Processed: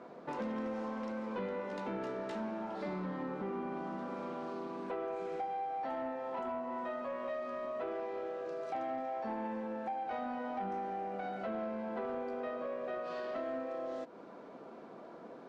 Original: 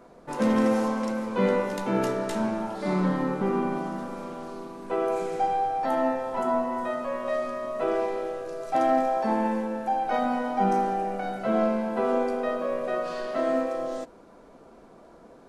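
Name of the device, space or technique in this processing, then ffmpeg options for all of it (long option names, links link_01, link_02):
AM radio: -af "highpass=170,lowpass=3900,acompressor=threshold=-38dB:ratio=4,asoftclip=type=tanh:threshold=-31dB,volume=1dB"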